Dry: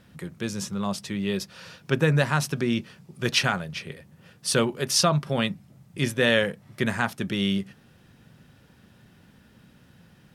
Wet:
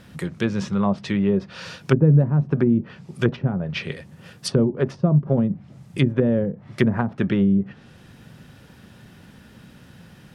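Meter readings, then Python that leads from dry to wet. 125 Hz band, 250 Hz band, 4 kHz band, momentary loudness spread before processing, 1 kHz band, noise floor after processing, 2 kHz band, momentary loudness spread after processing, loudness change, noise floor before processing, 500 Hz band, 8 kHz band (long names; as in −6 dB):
+8.0 dB, +7.5 dB, −8.5 dB, 19 LU, −3.0 dB, −49 dBFS, −5.5 dB, 15 LU, +4.0 dB, −57 dBFS, +3.0 dB, −12.0 dB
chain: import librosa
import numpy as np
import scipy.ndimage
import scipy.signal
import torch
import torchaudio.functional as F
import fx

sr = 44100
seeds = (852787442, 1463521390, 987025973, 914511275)

y = fx.env_lowpass_down(x, sr, base_hz=340.0, full_db=-20.5)
y = y * librosa.db_to_amplitude(8.0)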